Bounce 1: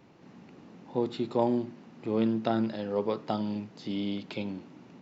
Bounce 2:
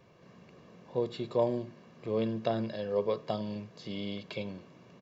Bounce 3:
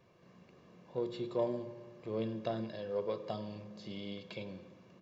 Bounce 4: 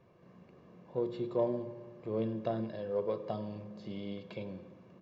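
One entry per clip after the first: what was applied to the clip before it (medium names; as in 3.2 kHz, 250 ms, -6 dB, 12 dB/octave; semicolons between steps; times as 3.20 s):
dynamic bell 1.3 kHz, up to -5 dB, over -49 dBFS, Q 2.6; comb 1.8 ms, depth 63%; trim -2.5 dB
in parallel at -11.5 dB: saturation -29 dBFS, distortion -10 dB; on the sum: reverberation RT60 1.6 s, pre-delay 3 ms, DRR 10 dB; trim -7.5 dB
treble shelf 2.4 kHz -12 dB; trim +3 dB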